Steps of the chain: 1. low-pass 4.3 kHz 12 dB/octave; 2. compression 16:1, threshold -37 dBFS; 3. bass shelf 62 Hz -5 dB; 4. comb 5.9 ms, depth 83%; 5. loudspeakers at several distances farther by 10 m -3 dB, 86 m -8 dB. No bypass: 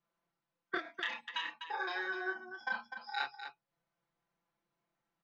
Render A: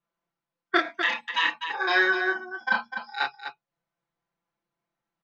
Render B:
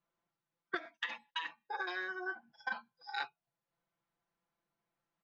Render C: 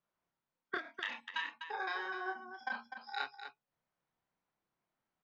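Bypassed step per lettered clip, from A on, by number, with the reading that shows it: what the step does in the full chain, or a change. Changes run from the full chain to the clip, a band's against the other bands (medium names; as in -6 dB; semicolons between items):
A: 2, mean gain reduction 11.5 dB; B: 5, echo-to-direct -2.0 dB to none; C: 4, 1 kHz band +2.5 dB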